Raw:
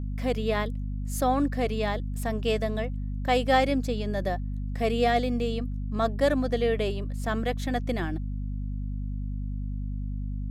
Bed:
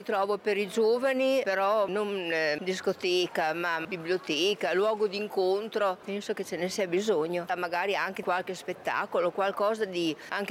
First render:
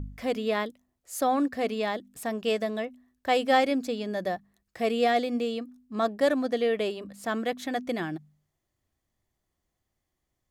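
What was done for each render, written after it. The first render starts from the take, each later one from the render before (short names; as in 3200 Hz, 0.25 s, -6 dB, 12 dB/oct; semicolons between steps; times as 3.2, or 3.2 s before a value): de-hum 50 Hz, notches 5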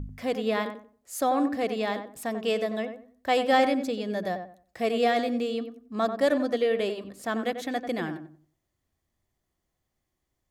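darkening echo 92 ms, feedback 27%, low-pass 1500 Hz, level -7.5 dB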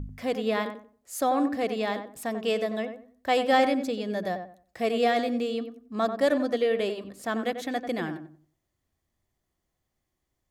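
nothing audible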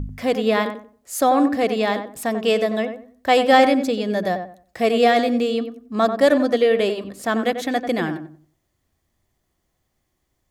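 gain +8 dB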